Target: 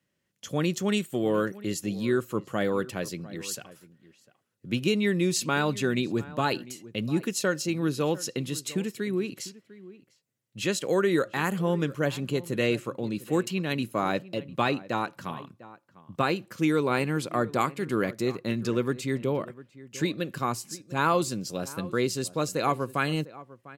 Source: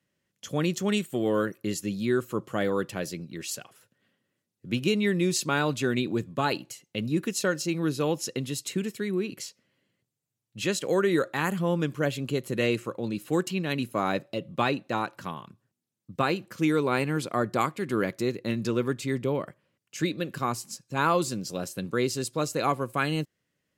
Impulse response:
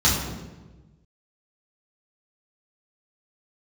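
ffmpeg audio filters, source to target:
-filter_complex "[0:a]asplit=2[link_01][link_02];[link_02]adelay=699.7,volume=-18dB,highshelf=frequency=4000:gain=-15.7[link_03];[link_01][link_03]amix=inputs=2:normalize=0"

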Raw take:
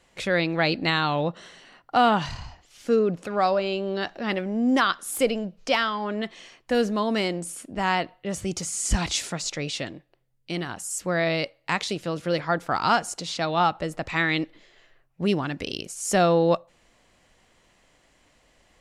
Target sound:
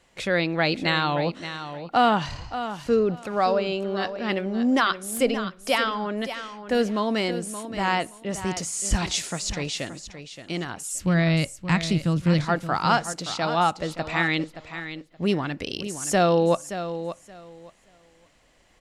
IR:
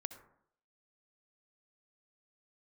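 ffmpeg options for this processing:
-filter_complex "[0:a]asplit=3[link_01][link_02][link_03];[link_01]afade=type=out:start_time=10.93:duration=0.02[link_04];[link_02]asubboost=boost=9:cutoff=170,afade=type=in:start_time=10.93:duration=0.02,afade=type=out:start_time=12.44:duration=0.02[link_05];[link_03]afade=type=in:start_time=12.44:duration=0.02[link_06];[link_04][link_05][link_06]amix=inputs=3:normalize=0,aecho=1:1:574|1148|1722:0.282|0.0535|0.0102"

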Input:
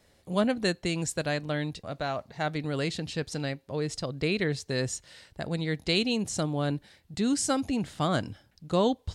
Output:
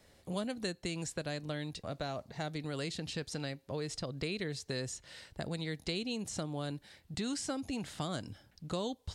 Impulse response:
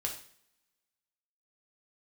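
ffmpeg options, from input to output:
-filter_complex "[0:a]acrossover=split=580|4100[link_01][link_02][link_03];[link_01]acompressor=threshold=-38dB:ratio=4[link_04];[link_02]acompressor=threshold=-44dB:ratio=4[link_05];[link_03]acompressor=threshold=-44dB:ratio=4[link_06];[link_04][link_05][link_06]amix=inputs=3:normalize=0"

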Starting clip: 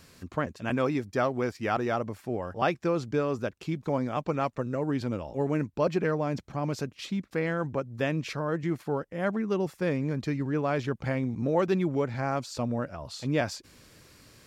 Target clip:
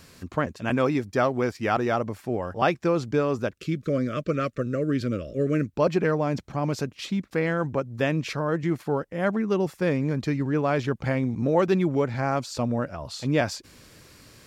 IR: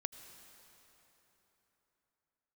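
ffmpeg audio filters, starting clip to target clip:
-filter_complex "[0:a]asettb=1/sr,asplit=3[link_01][link_02][link_03];[link_01]atrim=end=3.554[link_04];[link_02]atrim=start=3.55:end=5.74,asetpts=PTS-STARTPTS,afade=type=in:duration=0.004:curve=qsin,afade=type=out:start_time=2.186:duration=0.004:curve=qsin,asuperstop=centerf=850:order=8:qfactor=1.6[link_05];[link_03]atrim=start=5.736[link_06];[link_04][link_05]acrossfade=duration=0.004:curve1=hsin:curve2=qsin[link_07];[link_07][link_06]acrossfade=duration=0.004:curve1=qsin:curve2=hsin,volume=4dB"

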